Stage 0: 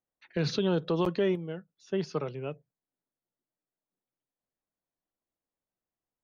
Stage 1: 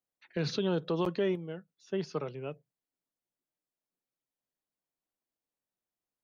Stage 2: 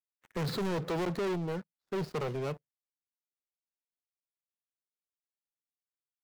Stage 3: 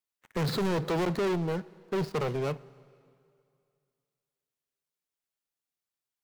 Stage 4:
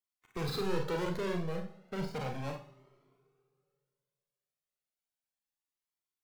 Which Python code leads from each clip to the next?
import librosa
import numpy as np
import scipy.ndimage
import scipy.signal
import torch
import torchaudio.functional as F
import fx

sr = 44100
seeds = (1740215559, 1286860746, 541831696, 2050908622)

y1 = fx.low_shelf(x, sr, hz=75.0, db=-6.0)
y1 = F.gain(torch.from_numpy(y1), -2.5).numpy()
y2 = scipy.ndimage.median_filter(y1, 15, mode='constant')
y2 = fx.leveller(y2, sr, passes=5)
y2 = F.gain(torch.from_numpy(y2), -8.0).numpy()
y3 = fx.rev_plate(y2, sr, seeds[0], rt60_s=2.4, hf_ratio=0.9, predelay_ms=0, drr_db=19.5)
y3 = F.gain(torch.from_numpy(y3), 4.0).numpy()
y4 = y3 + 10.0 ** (-22.5 / 20.0) * np.pad(y3, (int(162 * sr / 1000.0), 0))[:len(y3)]
y4 = fx.rev_schroeder(y4, sr, rt60_s=0.3, comb_ms=30, drr_db=3.0)
y4 = fx.comb_cascade(y4, sr, direction='rising', hz=0.34)
y4 = F.gain(torch.from_numpy(y4), -2.5).numpy()